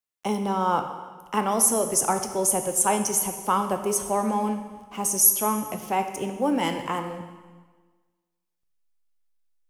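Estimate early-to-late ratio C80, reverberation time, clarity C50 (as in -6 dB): 9.5 dB, 1.4 s, 8.0 dB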